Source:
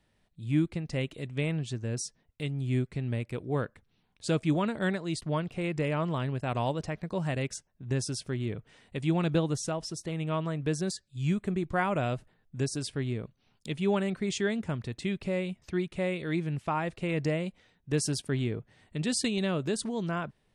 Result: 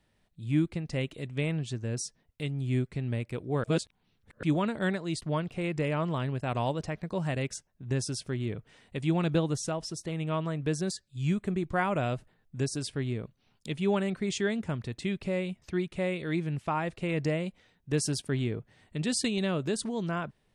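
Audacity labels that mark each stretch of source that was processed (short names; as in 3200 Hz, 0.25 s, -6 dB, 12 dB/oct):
3.640000	4.430000	reverse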